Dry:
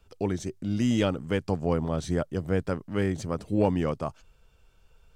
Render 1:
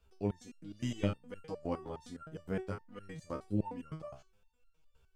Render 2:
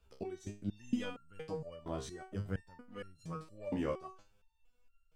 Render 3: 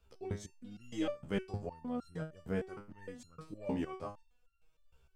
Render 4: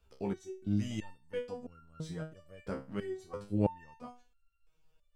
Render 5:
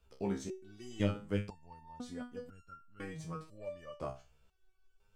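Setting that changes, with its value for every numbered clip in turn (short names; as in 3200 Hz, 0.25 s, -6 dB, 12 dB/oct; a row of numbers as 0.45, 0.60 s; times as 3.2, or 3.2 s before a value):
stepped resonator, rate: 9.7, 4.3, 6.5, 3, 2 Hz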